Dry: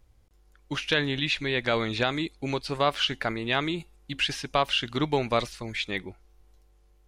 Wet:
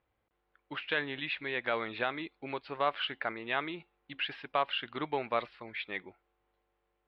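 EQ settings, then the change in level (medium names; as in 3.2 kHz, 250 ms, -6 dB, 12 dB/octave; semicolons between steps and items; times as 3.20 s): boxcar filter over 7 samples; high-pass 950 Hz 6 dB/octave; distance through air 280 m; 0.0 dB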